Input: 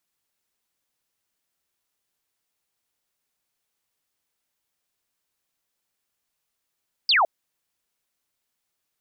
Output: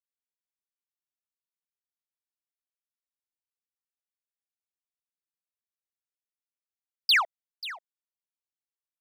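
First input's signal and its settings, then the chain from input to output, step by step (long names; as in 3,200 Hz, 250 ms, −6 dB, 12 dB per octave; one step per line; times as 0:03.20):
single falling chirp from 5,100 Hz, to 600 Hz, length 0.16 s sine, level −15.5 dB
high-pass filter 1,200 Hz 12 dB per octave
power curve on the samples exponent 1.4
single-tap delay 537 ms −15.5 dB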